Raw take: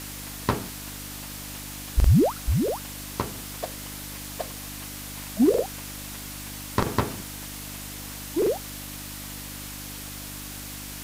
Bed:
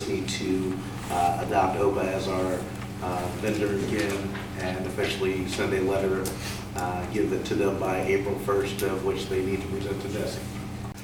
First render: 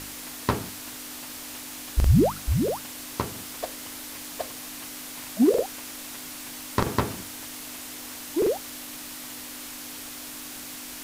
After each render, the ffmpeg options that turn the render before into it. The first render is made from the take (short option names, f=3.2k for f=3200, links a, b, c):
-af "bandreject=f=50:t=h:w=4,bandreject=f=100:t=h:w=4,bandreject=f=150:t=h:w=4,bandreject=f=200:t=h:w=4"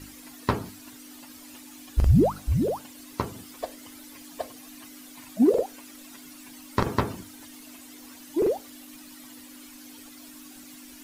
-af "afftdn=nr=13:nf=-39"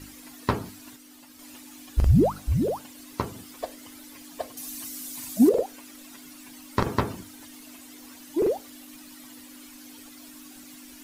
-filter_complex "[0:a]asettb=1/sr,asplit=3[a][b][c];[a]atrim=end=4.574[d];[b]atrim=start=4.57:end=5.49,asetpts=PTS-STARTPTS,afade=t=in:d=0.004:c=qsin,afade=t=out:st=0.916:d=0.004:c=qsin,bass=f=250:g=5,treble=f=4k:g=12[e];[c]atrim=start=5.486[f];[d][e]acrossfade=d=0.004:c1=hsin:c2=qsin[g];[g][f]acrossfade=d=0.004:c1=qsin:c2=hsin,asplit=3[h][i][j];[h]atrim=end=0.962[k];[i]atrim=start=0.958:end=1.392,asetpts=PTS-STARTPTS,volume=-4.5dB[l];[j]atrim=start=1.388[m];[k][l]acrossfade=d=0.004:c1=hsin:c2=hsin[n];[n][m]acrossfade=d=0.004:c1=hsin:c2=hsin"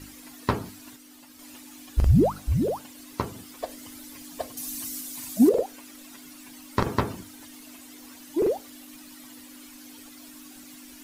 -filter_complex "[0:a]asettb=1/sr,asplit=3[a][b][c];[a]atrim=end=3.694[d];[b]atrim=start=3.69:end=5.01,asetpts=PTS-STARTPTS,afade=t=in:d=0.004:c=qsin,afade=t=out:st=1.316:d=0.004:c=qsin,bass=f=250:g=5,treble=f=4k:g=3[e];[c]atrim=start=5.006[f];[d][e]acrossfade=d=0.004:c1=hsin:c2=qsin[g];[g][f]acrossfade=d=0.004:c1=qsin:c2=hsin"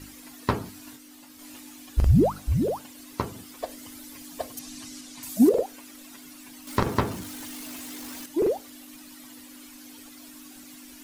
-filter_complex "[0:a]asettb=1/sr,asplit=3[a][b][c];[a]atrim=end=0.724[d];[b]atrim=start=0.72:end=1.72,asetpts=PTS-STARTPTS,afade=t=in:d=0.004:c=qsin,afade=t=out:st=0.996:d=0.004:c=qsin,asplit=2[e][f];[f]adelay=23,volume=-7dB[g];[e][g]amix=inputs=2:normalize=0,atrim=end_sample=44100[h];[c]atrim=start=1.716[i];[d][h]acrossfade=d=0.004:c1=hsin:c2=qsin[j];[j][i]acrossfade=d=0.004:c1=qsin:c2=hsin,asettb=1/sr,asplit=3[k][l][m];[k]atrim=end=4.594[n];[l]atrim=start=4.59:end=5.23,asetpts=PTS-STARTPTS,afade=t=in:d=0.004:c=qsin,afade=t=out:st=0.636:d=0.004:c=qsin,lowpass=5.8k[o];[m]atrim=start=5.226[p];[n][o]acrossfade=d=0.004:c1=hsin:c2=qsin[q];[q][p]acrossfade=d=0.004:c1=qsin:c2=hsin,asettb=1/sr,asplit=3[r][s][t];[r]atrim=end=6.674[u];[s]atrim=start=6.67:end=8.26,asetpts=PTS-STARTPTS,afade=t=in:d=0.004:c=qsin,afade=t=out:st=1.586:d=0.004:c=qsin,aeval=exprs='val(0)+0.5*0.0141*sgn(val(0))':c=same[v];[t]atrim=start=8.256[w];[u][v]acrossfade=d=0.004:c1=hsin:c2=qsin[x];[x][w]acrossfade=d=0.004:c1=qsin:c2=hsin"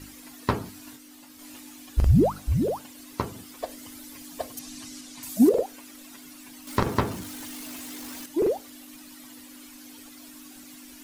-af anull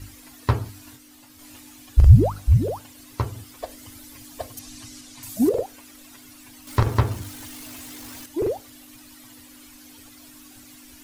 -af "lowshelf=f=140:t=q:w=3:g=6.5"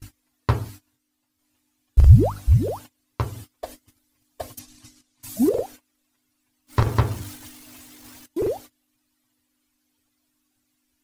-af "agate=range=-26dB:threshold=-39dB:ratio=16:detection=peak"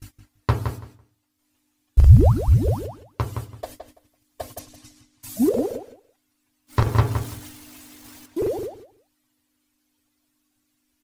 -filter_complex "[0:a]asplit=2[a][b];[b]adelay=167,lowpass=f=3.3k:p=1,volume=-7dB,asplit=2[c][d];[d]adelay=167,lowpass=f=3.3k:p=1,volume=0.17,asplit=2[e][f];[f]adelay=167,lowpass=f=3.3k:p=1,volume=0.17[g];[a][c][e][g]amix=inputs=4:normalize=0"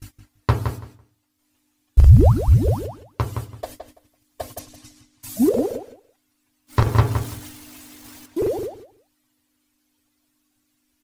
-af "volume=2dB,alimiter=limit=-2dB:level=0:latency=1"